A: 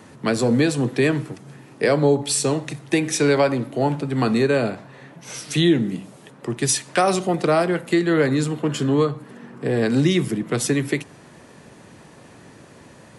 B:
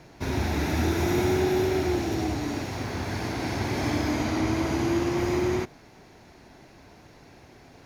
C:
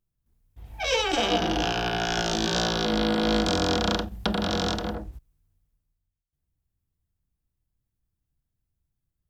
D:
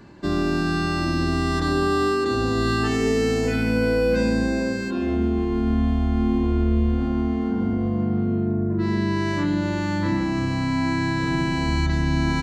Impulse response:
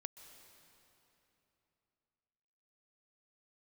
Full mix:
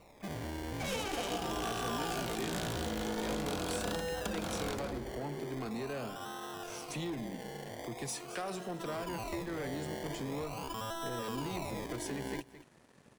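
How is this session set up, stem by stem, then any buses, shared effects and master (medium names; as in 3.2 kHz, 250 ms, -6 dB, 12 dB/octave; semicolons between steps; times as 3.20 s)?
-19.5 dB, 1.40 s, no send, echo send -18 dB, waveshaping leveller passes 2
-18.0 dB, 0.00 s, no send, no echo send, formants replaced by sine waves
-3.5 dB, 0.00 s, no send, no echo send, delay time shaken by noise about 3 kHz, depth 0.039 ms
-3.5 dB, 0.00 s, no send, echo send -22.5 dB, inverse Chebyshev high-pass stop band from 160 Hz, stop band 60 dB; decimation with a swept rate 27×, swing 60% 0.43 Hz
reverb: none
echo: delay 216 ms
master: compression 2:1, threshold -41 dBFS, peak gain reduction 11 dB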